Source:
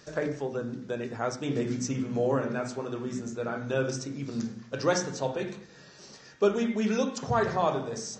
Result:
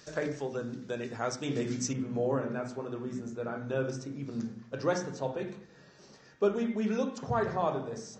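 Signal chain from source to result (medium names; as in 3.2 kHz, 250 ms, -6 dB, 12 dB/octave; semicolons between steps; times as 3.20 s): treble shelf 2.4 kHz +5 dB, from 1.93 s -8 dB; trim -3 dB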